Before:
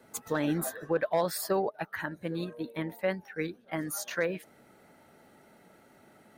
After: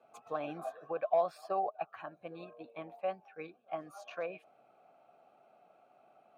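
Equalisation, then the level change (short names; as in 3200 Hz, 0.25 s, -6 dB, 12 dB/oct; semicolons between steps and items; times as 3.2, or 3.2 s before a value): vowel filter a; bell 130 Hz +8 dB 0.84 oct; +5.0 dB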